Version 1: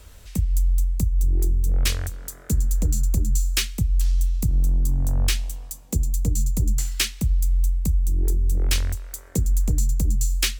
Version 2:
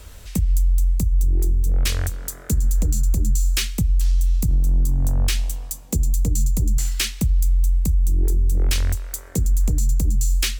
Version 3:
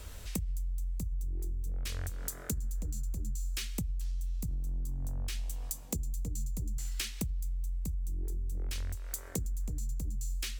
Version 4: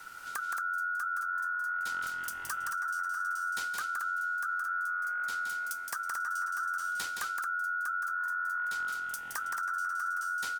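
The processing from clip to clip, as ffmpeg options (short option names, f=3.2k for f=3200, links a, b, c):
-af "alimiter=limit=-17dB:level=0:latency=1:release=65,volume=5dB"
-af "acompressor=threshold=-27dB:ratio=16,volume=-4.5dB"
-af "aeval=exprs='val(0)*sin(2*PI*1400*n/s)':c=same,aecho=1:1:169.1|224.5:0.562|0.447"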